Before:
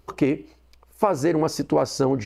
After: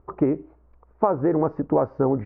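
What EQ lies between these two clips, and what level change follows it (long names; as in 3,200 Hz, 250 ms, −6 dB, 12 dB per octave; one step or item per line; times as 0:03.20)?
low-pass filter 1,400 Hz 24 dB per octave
0.0 dB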